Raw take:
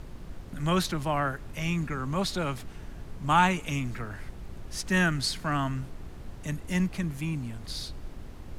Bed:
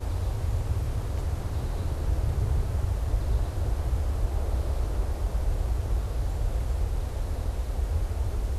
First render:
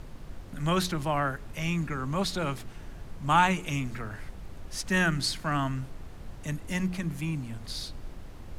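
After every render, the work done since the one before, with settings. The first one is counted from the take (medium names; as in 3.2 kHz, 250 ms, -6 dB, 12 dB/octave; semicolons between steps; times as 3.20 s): de-hum 60 Hz, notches 7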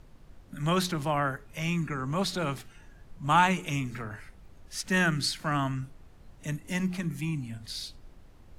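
noise print and reduce 10 dB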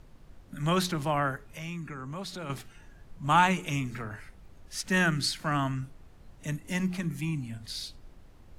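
1.49–2.50 s: compression 2:1, threshold -41 dBFS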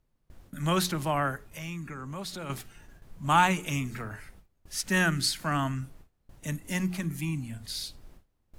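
gate with hold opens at -41 dBFS; treble shelf 10 kHz +11 dB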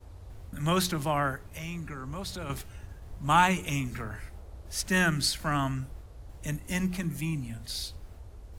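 add bed -18 dB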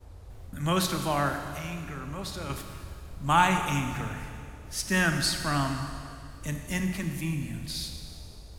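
Schroeder reverb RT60 2.3 s, combs from 28 ms, DRR 5.5 dB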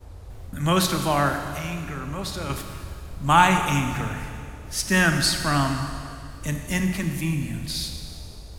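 trim +5.5 dB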